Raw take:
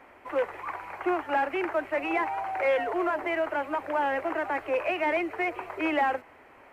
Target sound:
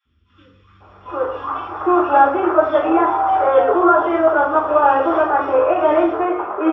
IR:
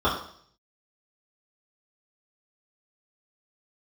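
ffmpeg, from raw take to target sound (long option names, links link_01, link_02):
-filter_complex "[0:a]dynaudnorm=framelen=260:gausssize=7:maxgain=7dB,aresample=16000,aresample=44100,acrossover=split=190|2900[link_01][link_02][link_03];[link_01]adelay=50[link_04];[link_02]adelay=800[link_05];[link_04][link_05][link_03]amix=inputs=3:normalize=0[link_06];[1:a]atrim=start_sample=2205[link_07];[link_06][link_07]afir=irnorm=-1:irlink=0,volume=-11dB"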